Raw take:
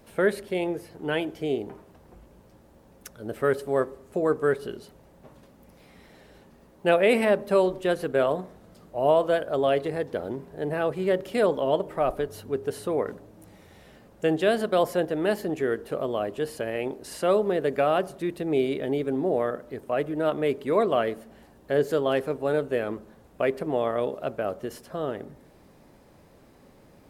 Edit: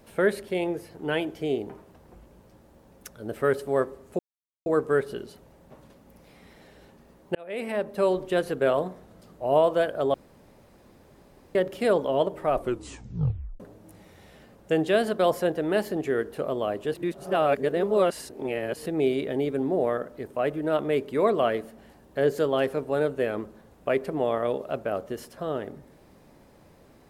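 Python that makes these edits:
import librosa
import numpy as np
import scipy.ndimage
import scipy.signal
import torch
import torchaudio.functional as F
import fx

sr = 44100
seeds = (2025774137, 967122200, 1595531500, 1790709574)

y = fx.edit(x, sr, fx.insert_silence(at_s=4.19, length_s=0.47),
    fx.fade_in_span(start_s=6.88, length_s=0.91),
    fx.room_tone_fill(start_s=9.67, length_s=1.41),
    fx.tape_stop(start_s=12.07, length_s=1.06),
    fx.reverse_span(start_s=16.47, length_s=1.92), tone=tone)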